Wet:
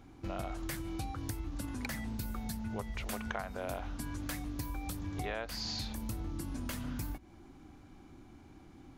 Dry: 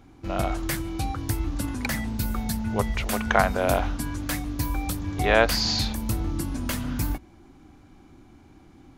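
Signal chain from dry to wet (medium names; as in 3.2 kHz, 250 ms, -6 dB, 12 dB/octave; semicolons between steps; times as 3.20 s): compression 6:1, threshold -32 dBFS, peak gain reduction 18.5 dB; trim -3.5 dB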